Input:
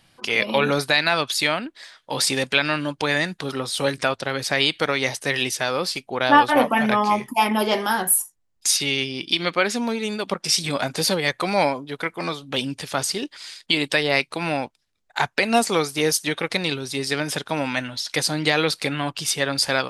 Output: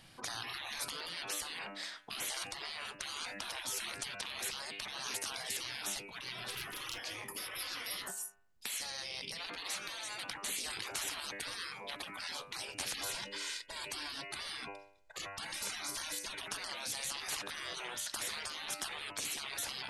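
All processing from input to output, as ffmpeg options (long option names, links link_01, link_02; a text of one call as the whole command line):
ffmpeg -i in.wav -filter_complex "[0:a]asettb=1/sr,asplit=3[link_01][link_02][link_03];[link_01]atrim=end=6.484[link_04];[link_02]atrim=start=6.48:end=6.98,asetpts=PTS-STARTPTS,afade=type=in:duration=0.004:curve=qsin,afade=type=out:start_time=0.496:duration=0.004:curve=qsin,equalizer=frequency=200:width=0.82:gain=-8,volume=14dB,asoftclip=hard,volume=-14dB[link_05];[link_03]atrim=start=6.976[link_06];[link_04][link_05]acrossfade=duration=0.004:curve1=hsin:curve2=qsin[link_07];[link_07][link_06]acrossfade=duration=0.004:curve1=qsin:curve2=hsin,asettb=1/sr,asplit=3[link_08][link_09][link_10];[link_08]atrim=end=12.934[link_11];[link_09]atrim=start=12.93:end=16.4,asetpts=PTS-STARTPTS,afade=type=in:duration=0.004:curve=qsin,afade=type=out:start_time=3.466:duration=0.004:curve=qsin,highshelf=frequency=9400:gain=-5.5,aecho=1:1:2:0.9,atrim=end_sample=153027[link_12];[link_10]atrim=start=16.396[link_13];[link_11][link_12]acrossfade=duration=0.004:curve1=hsin:curve2=qsin[link_14];[link_14][link_13]acrossfade=duration=0.004:curve1=qsin:curve2=hsin,bandreject=frequency=99.49:width_type=h:width=4,bandreject=frequency=198.98:width_type=h:width=4,bandreject=frequency=298.47:width_type=h:width=4,bandreject=frequency=397.96:width_type=h:width=4,bandreject=frequency=497.45:width_type=h:width=4,bandreject=frequency=596.94:width_type=h:width=4,bandreject=frequency=696.43:width_type=h:width=4,bandreject=frequency=795.92:width_type=h:width=4,bandreject=frequency=895.41:width_type=h:width=4,bandreject=frequency=994.9:width_type=h:width=4,bandreject=frequency=1094.39:width_type=h:width=4,bandreject=frequency=1193.88:width_type=h:width=4,bandreject=frequency=1293.37:width_type=h:width=4,bandreject=frequency=1392.86:width_type=h:width=4,bandreject=frequency=1492.35:width_type=h:width=4,bandreject=frequency=1591.84:width_type=h:width=4,bandreject=frequency=1691.33:width_type=h:width=4,bandreject=frequency=1790.82:width_type=h:width=4,bandreject=frequency=1890.31:width_type=h:width=4,bandreject=frequency=1989.8:width_type=h:width=4,bandreject=frequency=2089.29:width_type=h:width=4,bandreject=frequency=2188.78:width_type=h:width=4,bandreject=frequency=2288.27:width_type=h:width=4,bandreject=frequency=2387.76:width_type=h:width=4,bandreject=frequency=2487.25:width_type=h:width=4,bandreject=frequency=2586.74:width_type=h:width=4,bandreject=frequency=2686.23:width_type=h:width=4,bandreject=frequency=2785.72:width_type=h:width=4,bandreject=frequency=2885.21:width_type=h:width=4,acompressor=threshold=-21dB:ratio=10,afftfilt=real='re*lt(hypot(re,im),0.0355)':imag='im*lt(hypot(re,im),0.0355)':win_size=1024:overlap=0.75" out.wav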